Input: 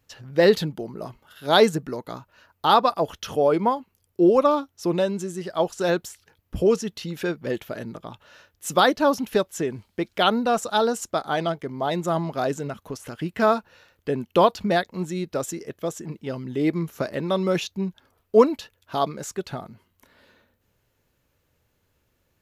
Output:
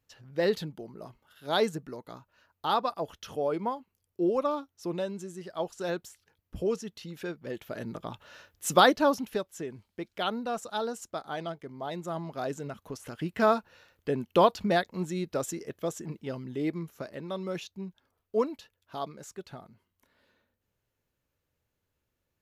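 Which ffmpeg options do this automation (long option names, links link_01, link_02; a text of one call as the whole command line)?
ffmpeg -i in.wav -af "volume=6.5dB,afade=type=in:start_time=7.55:duration=0.49:silence=0.334965,afade=type=out:start_time=8.71:duration=0.7:silence=0.298538,afade=type=in:start_time=12.14:duration=1.21:silence=0.446684,afade=type=out:start_time=16.08:duration=0.9:silence=0.398107" out.wav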